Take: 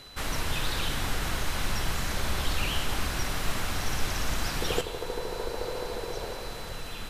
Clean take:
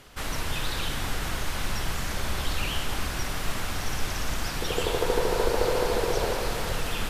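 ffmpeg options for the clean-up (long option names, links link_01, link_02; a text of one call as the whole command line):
ffmpeg -i in.wav -af "bandreject=frequency=4000:width=30,asetnsamples=nb_out_samples=441:pad=0,asendcmd='4.81 volume volume 9dB',volume=0dB" out.wav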